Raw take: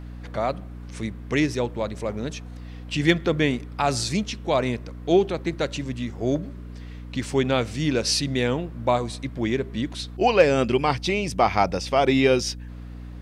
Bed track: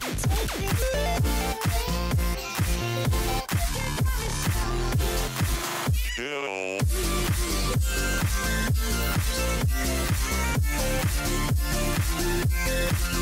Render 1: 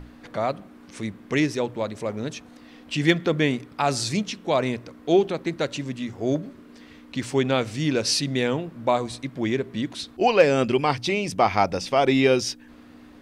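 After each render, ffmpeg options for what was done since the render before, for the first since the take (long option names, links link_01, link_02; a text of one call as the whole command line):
ffmpeg -i in.wav -af "bandreject=frequency=60:width_type=h:width=6,bandreject=frequency=120:width_type=h:width=6,bandreject=frequency=180:width_type=h:width=6" out.wav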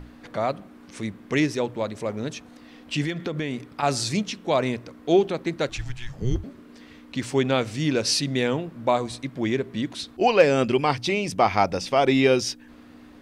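ffmpeg -i in.wav -filter_complex "[0:a]asettb=1/sr,asplit=3[link_01][link_02][link_03];[link_01]atrim=end=3.024[link_04];[link_02]atrim=start=3.02:end=3.83,asetpts=PTS-STARTPTS,afade=type=in:duration=0.004:curve=qsin,afade=type=out:start_time=0.806:duration=0.004:curve=qsin,acompressor=threshold=-24dB:ratio=6:attack=3.2:release=140:knee=1:detection=peak[link_05];[link_03]atrim=start=3.826[link_06];[link_04][link_05]acrossfade=duration=0.004:curve1=hsin:curve2=qsin[link_07];[link_07][link_06]acrossfade=duration=0.004:curve1=qsin:curve2=hsin,asettb=1/sr,asplit=3[link_08][link_09][link_10];[link_08]atrim=end=5.694[link_11];[link_09]atrim=start=5.69:end=6.44,asetpts=PTS-STARTPTS,afade=type=in:duration=0.004:curve=qsin,afade=type=out:start_time=0.746:duration=0.004:curve=qsin,afreqshift=-250[link_12];[link_10]atrim=start=6.436[link_13];[link_11][link_12]acrossfade=duration=0.004:curve1=hsin:curve2=qsin[link_14];[link_14][link_13]acrossfade=duration=0.004:curve1=qsin:curve2=hsin" out.wav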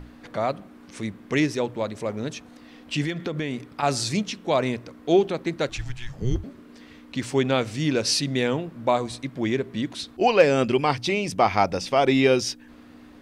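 ffmpeg -i in.wav -af anull out.wav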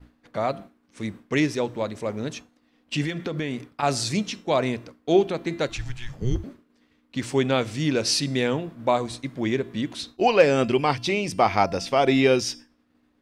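ffmpeg -i in.wav -af "bandreject=frequency=340.1:width_type=h:width=4,bandreject=frequency=680.2:width_type=h:width=4,bandreject=frequency=1020.3:width_type=h:width=4,bandreject=frequency=1360.4:width_type=h:width=4,bandreject=frequency=1700.5:width_type=h:width=4,bandreject=frequency=2040.6:width_type=h:width=4,bandreject=frequency=2380.7:width_type=h:width=4,bandreject=frequency=2720.8:width_type=h:width=4,bandreject=frequency=3060.9:width_type=h:width=4,bandreject=frequency=3401:width_type=h:width=4,bandreject=frequency=3741.1:width_type=h:width=4,bandreject=frequency=4081.2:width_type=h:width=4,bandreject=frequency=4421.3:width_type=h:width=4,bandreject=frequency=4761.4:width_type=h:width=4,bandreject=frequency=5101.5:width_type=h:width=4,bandreject=frequency=5441.6:width_type=h:width=4,bandreject=frequency=5781.7:width_type=h:width=4,bandreject=frequency=6121.8:width_type=h:width=4,bandreject=frequency=6461.9:width_type=h:width=4,bandreject=frequency=6802:width_type=h:width=4,bandreject=frequency=7142.1:width_type=h:width=4,bandreject=frequency=7482.2:width_type=h:width=4,bandreject=frequency=7822.3:width_type=h:width=4,bandreject=frequency=8162.4:width_type=h:width=4,bandreject=frequency=8502.5:width_type=h:width=4,bandreject=frequency=8842.6:width_type=h:width=4,bandreject=frequency=9182.7:width_type=h:width=4,bandreject=frequency=9522.8:width_type=h:width=4,bandreject=frequency=9862.9:width_type=h:width=4,agate=range=-33dB:threshold=-35dB:ratio=3:detection=peak" out.wav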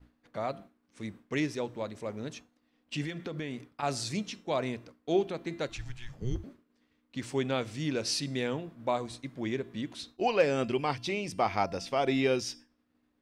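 ffmpeg -i in.wav -af "volume=-8.5dB" out.wav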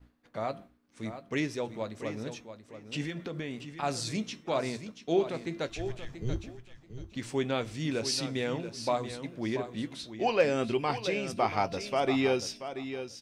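ffmpeg -i in.wav -filter_complex "[0:a]asplit=2[link_01][link_02];[link_02]adelay=18,volume=-13dB[link_03];[link_01][link_03]amix=inputs=2:normalize=0,asplit=2[link_04][link_05];[link_05]aecho=0:1:683|1366:0.299|0.0537[link_06];[link_04][link_06]amix=inputs=2:normalize=0" out.wav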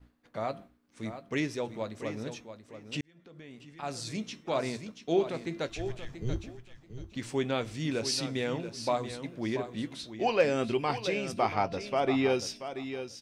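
ffmpeg -i in.wav -filter_complex "[0:a]asettb=1/sr,asplit=3[link_01][link_02][link_03];[link_01]atrim=end=11.534[link_04];[link_02]atrim=start=11.53:end=12.3,asetpts=PTS-STARTPTS,afade=type=in:duration=0.004:curve=qsin,afade=type=out:start_time=0.766:duration=0.004:curve=qsin,aemphasis=mode=reproduction:type=cd[link_05];[link_03]atrim=start=12.296[link_06];[link_04][link_05]acrossfade=duration=0.004:curve1=hsin:curve2=qsin[link_07];[link_07][link_06]acrossfade=duration=0.004:curve1=qsin:curve2=hsin,asplit=2[link_08][link_09];[link_08]atrim=end=3.01,asetpts=PTS-STARTPTS,afade=type=out:start_time=3.006:duration=0.004:curve=hsin[link_10];[link_09]atrim=start=3.01,asetpts=PTS-STARTPTS,afade=type=in:duration=1.6[link_11];[link_10][link_11]concat=n=2:v=0:a=1" out.wav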